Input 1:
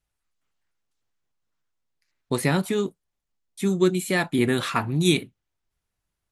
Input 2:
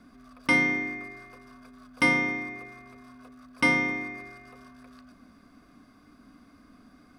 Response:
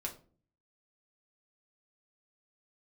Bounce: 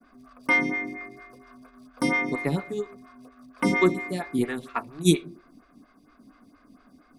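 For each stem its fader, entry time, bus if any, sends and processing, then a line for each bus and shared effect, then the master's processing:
+2.0 dB, 0.00 s, send −4.5 dB, expander for the loud parts 2.5 to 1, over −34 dBFS
+3.0 dB, 0.00 s, no send, no processing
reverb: on, RT60 0.40 s, pre-delay 4 ms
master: downward expander −51 dBFS; phaser with staggered stages 4.3 Hz

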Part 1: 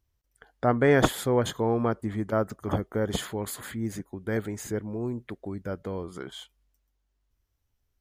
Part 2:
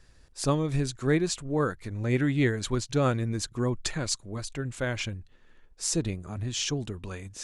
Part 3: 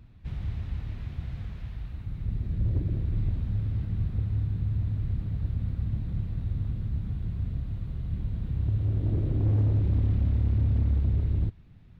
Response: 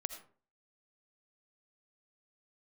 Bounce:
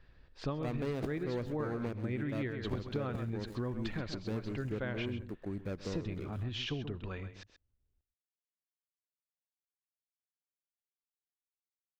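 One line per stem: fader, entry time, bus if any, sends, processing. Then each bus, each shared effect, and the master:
−3.0 dB, 0.00 s, no send, echo send −16 dB, running median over 41 samples; parametric band 810 Hz −3.5 dB
−5.0 dB, 0.00 s, send −11.5 dB, echo send −9.5 dB, low-pass filter 3,600 Hz 24 dB per octave
muted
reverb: on, RT60 0.45 s, pre-delay 40 ms
echo: single-tap delay 131 ms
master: downward compressor 6 to 1, threshold −33 dBFS, peak gain reduction 13 dB

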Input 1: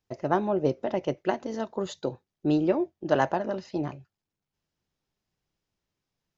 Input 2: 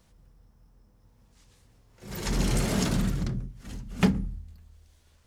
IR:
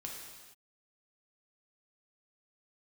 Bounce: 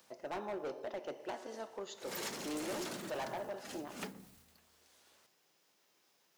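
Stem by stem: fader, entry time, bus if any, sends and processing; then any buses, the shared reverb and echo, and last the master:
−12.0 dB, 0.00 s, send −5 dB, upward compression, threshold −43 dBFS; high-shelf EQ 8,300 Hz +5.5 dB
+0.5 dB, 0.00 s, no send, downward compressor 10 to 1, threshold −32 dBFS, peak gain reduction 16.5 dB; noise that follows the level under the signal 27 dB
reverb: on, pre-delay 3 ms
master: high-pass filter 400 Hz 12 dB per octave; hard clipping −36 dBFS, distortion −7 dB

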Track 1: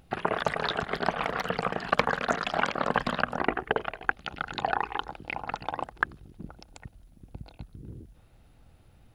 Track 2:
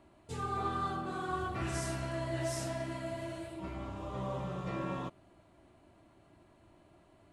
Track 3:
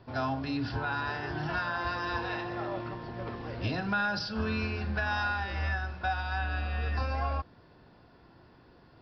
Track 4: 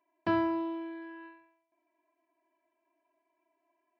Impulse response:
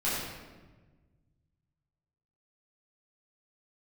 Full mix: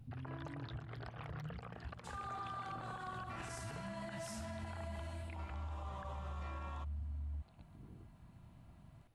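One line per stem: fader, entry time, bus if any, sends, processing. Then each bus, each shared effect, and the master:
−12.5 dB, 0.00 s, bus A, no send, no processing
−5.0 dB, 1.75 s, no bus, no send, low shelf with overshoot 610 Hz −8 dB, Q 1.5
+2.5 dB, 0.00 s, bus A, no send, inverse Chebyshev band-stop filter 740–3,400 Hz, stop band 70 dB
−14.5 dB, 0.00 s, bus A, no send, no processing
bus A: 0.0 dB, downward compressor 2.5 to 1, threshold −47 dBFS, peak gain reduction 13.5 dB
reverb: not used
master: brickwall limiter −36.5 dBFS, peak gain reduction 10 dB

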